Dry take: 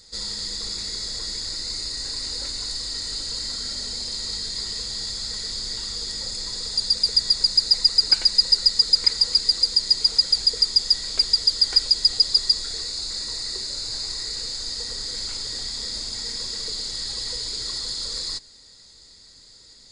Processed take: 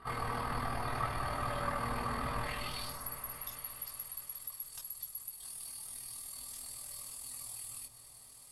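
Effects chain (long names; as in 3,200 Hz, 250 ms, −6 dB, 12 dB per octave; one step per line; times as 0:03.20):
band-pass filter sweep 600 Hz → 3,200 Hz, 0:05.53–0:07.17
downward compressor 3 to 1, threshold −46 dBFS, peak gain reduction 19.5 dB
RIAA equalisation playback
amplitude tremolo 17 Hz, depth 81%
high-frequency loss of the air 180 metres
echo whose low-pass opens from repeat to repeat 522 ms, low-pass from 200 Hz, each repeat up 1 octave, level −6 dB
convolution reverb, pre-delay 3 ms, DRR −1.5 dB
wrong playback speed 33 rpm record played at 78 rpm
level +12 dB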